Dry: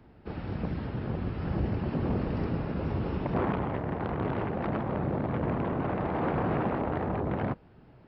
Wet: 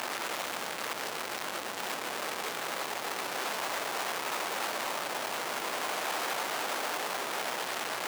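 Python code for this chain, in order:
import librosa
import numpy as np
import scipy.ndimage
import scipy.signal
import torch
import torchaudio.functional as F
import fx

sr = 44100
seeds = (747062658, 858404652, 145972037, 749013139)

y = np.sign(x) * np.sqrt(np.mean(np.square(x)))
y = scipy.signal.sosfilt(scipy.signal.butter(2, 670.0, 'highpass', fs=sr, output='sos'), y)
y = F.gain(torch.from_numpy(y), 1.5).numpy()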